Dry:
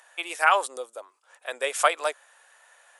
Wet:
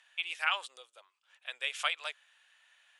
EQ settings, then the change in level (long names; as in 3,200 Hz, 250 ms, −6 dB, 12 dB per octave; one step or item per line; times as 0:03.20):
resonant band-pass 3,000 Hz, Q 2.2
0.0 dB